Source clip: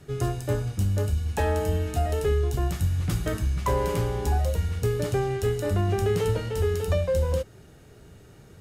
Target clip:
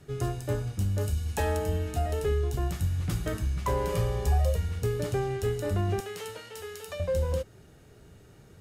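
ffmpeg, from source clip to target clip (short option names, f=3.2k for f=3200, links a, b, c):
-filter_complex "[0:a]asettb=1/sr,asplit=3[a][b][c];[a]atrim=end=1.014[d];[b]atrim=start=1.01:end=1.57,asetpts=PTS-STARTPTS,afade=t=in:d=0.004:c=qsin,afade=t=out:st=0.556:d=0.004:c=qsin,highshelf=f=3.9k:g=6.5[e];[c]atrim=start=1.566[f];[d][e]acrossfade=d=0.004:c1=hsin:c2=qsin[g];[g][f]acrossfade=d=0.004:c1=qsin:c2=hsin,asettb=1/sr,asplit=3[h][i][j];[h]atrim=end=3.924[k];[i]atrim=start=3.92:end=4.58,asetpts=PTS-STARTPTS,afade=t=in:d=0.004:c=qsin,afade=t=out:st=0.656:d=0.004:c=qsin,aecho=1:1:1.7:0.63,atrim=end_sample=29106[l];[j]atrim=start=4.576[m];[k][l]acrossfade=d=0.004:c1=hsin:c2=qsin[n];[n][m]acrossfade=d=0.004:c1=qsin:c2=hsin,asettb=1/sr,asplit=3[o][p][q];[o]atrim=end=6.004[r];[p]atrim=start=6:end=7,asetpts=PTS-STARTPTS,afade=t=in:d=0.004:c=qsin,afade=t=out:st=0.996:d=0.004:c=qsin,highpass=f=1.4k:p=1[s];[q]atrim=start=6.996[t];[r][s]acrossfade=d=0.004:c1=hsin:c2=qsin[u];[u][t]acrossfade=d=0.004:c1=qsin:c2=hsin,volume=-3.5dB"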